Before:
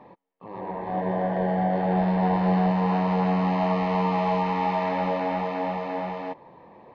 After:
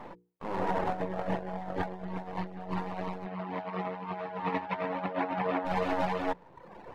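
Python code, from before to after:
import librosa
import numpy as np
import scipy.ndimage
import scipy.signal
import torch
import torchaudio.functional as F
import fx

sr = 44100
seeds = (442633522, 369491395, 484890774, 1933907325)

y = np.where(x < 0.0, 10.0 ** (-12.0 / 20.0) * x, x)
y = fx.dereverb_blind(y, sr, rt60_s=1.0)
y = fx.hum_notches(y, sr, base_hz=60, count=8)
y = fx.over_compress(y, sr, threshold_db=-35.0, ratio=-0.5)
y = fx.bandpass_edges(y, sr, low_hz=130.0, high_hz=fx.line((3.25, 3300.0), (5.64, 2600.0)), at=(3.25, 5.64), fade=0.02)
y = F.gain(torch.from_numpy(y), 3.0).numpy()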